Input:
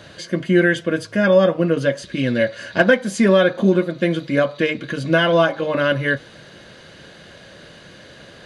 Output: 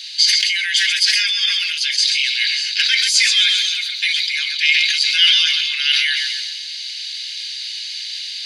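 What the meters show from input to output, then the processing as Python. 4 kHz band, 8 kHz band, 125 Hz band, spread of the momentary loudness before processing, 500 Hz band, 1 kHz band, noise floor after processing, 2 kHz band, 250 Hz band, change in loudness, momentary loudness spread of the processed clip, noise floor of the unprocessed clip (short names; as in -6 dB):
+18.5 dB, +17.0 dB, under -40 dB, 8 LU, under -40 dB, under -15 dB, -29 dBFS, +3.5 dB, under -40 dB, +3.0 dB, 13 LU, -44 dBFS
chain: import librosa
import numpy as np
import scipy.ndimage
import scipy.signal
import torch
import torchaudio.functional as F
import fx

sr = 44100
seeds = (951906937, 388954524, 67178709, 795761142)

p1 = scipy.signal.sosfilt(scipy.signal.ellip(4, 1.0, 70, 2200.0, 'highpass', fs=sr, output='sos'), x)
p2 = fx.peak_eq(p1, sr, hz=4600.0, db=14.5, octaves=0.86)
p3 = fx.rider(p2, sr, range_db=5, speed_s=2.0)
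p4 = p2 + (p3 * 10.0 ** (2.5 / 20.0))
p5 = fx.quant_dither(p4, sr, seeds[0], bits=12, dither='triangular')
p6 = fx.echo_feedback(p5, sr, ms=132, feedback_pct=51, wet_db=-11.5)
p7 = fx.sustainer(p6, sr, db_per_s=23.0)
y = p7 * 10.0 ** (1.0 / 20.0)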